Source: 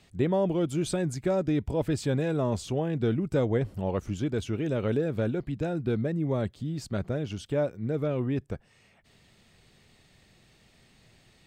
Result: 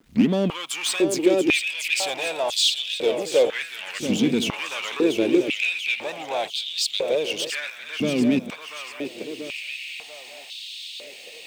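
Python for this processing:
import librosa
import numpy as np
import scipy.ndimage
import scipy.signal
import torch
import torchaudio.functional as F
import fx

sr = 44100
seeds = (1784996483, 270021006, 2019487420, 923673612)

p1 = fx.tape_start_head(x, sr, length_s=0.3)
p2 = fx.high_shelf_res(p1, sr, hz=1900.0, db=10.0, q=3.0)
p3 = fx.level_steps(p2, sr, step_db=11)
p4 = p2 + (p3 * 10.0 ** (-0.5 / 20.0))
p5 = fx.leveller(p4, sr, passes=1)
p6 = fx.quant_dither(p5, sr, seeds[0], bits=10, dither='none')
p7 = fx.power_curve(p6, sr, exponent=0.7)
p8 = p7 + fx.echo_feedback(p7, sr, ms=687, feedback_pct=53, wet_db=-7, dry=0)
p9 = fx.filter_held_highpass(p8, sr, hz=2.0, low_hz=230.0, high_hz=3600.0)
y = p9 * 10.0 ** (-8.0 / 20.0)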